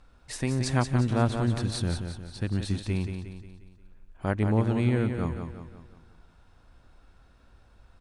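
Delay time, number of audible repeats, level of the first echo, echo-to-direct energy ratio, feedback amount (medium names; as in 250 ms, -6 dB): 178 ms, 5, -7.0 dB, -6.0 dB, 47%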